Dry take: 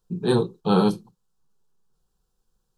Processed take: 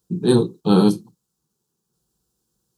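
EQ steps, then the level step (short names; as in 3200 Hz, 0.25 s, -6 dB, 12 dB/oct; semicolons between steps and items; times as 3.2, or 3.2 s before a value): HPF 60 Hz 24 dB/oct; tone controls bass +5 dB, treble +10 dB; bell 300 Hz +10 dB 0.64 oct; -1.0 dB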